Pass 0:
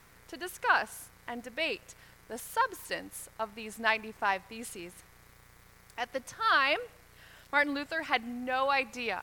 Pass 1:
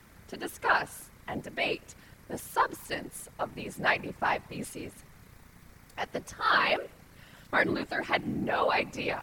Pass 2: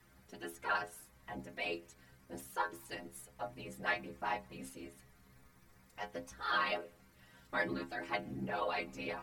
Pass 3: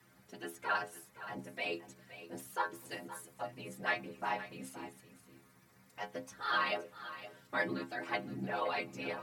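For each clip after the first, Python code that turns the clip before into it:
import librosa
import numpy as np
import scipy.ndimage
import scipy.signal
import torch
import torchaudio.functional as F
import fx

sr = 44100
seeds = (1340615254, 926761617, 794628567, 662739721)

y1 = fx.low_shelf(x, sr, hz=380.0, db=7.5)
y1 = fx.whisperise(y1, sr, seeds[0])
y2 = fx.stiff_resonator(y1, sr, f0_hz=62.0, decay_s=0.33, stiffness=0.008)
y2 = y2 * librosa.db_to_amplitude(-1.5)
y3 = scipy.signal.sosfilt(scipy.signal.butter(4, 100.0, 'highpass', fs=sr, output='sos'), y2)
y3 = y3 + 10.0 ** (-14.0 / 20.0) * np.pad(y3, (int(519 * sr / 1000.0), 0))[:len(y3)]
y3 = y3 * librosa.db_to_amplitude(1.0)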